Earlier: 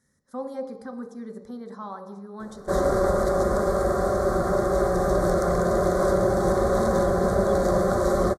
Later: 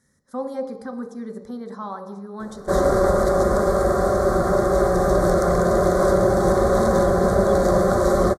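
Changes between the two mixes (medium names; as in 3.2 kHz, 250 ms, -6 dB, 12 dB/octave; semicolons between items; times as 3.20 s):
speech +4.5 dB; background +4.0 dB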